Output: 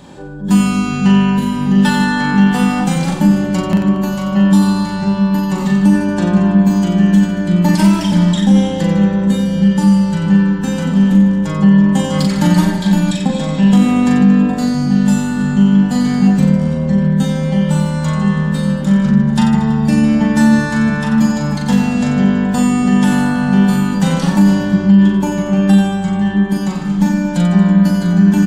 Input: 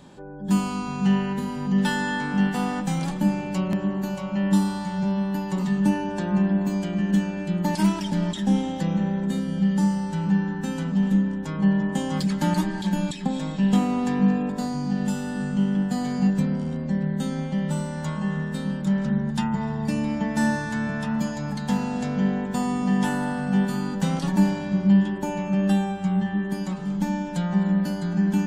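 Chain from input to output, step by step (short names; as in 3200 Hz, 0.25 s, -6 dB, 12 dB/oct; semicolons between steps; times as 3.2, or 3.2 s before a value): reverse bouncing-ball echo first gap 40 ms, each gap 1.25×, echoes 5; maximiser +10 dB; gain -1 dB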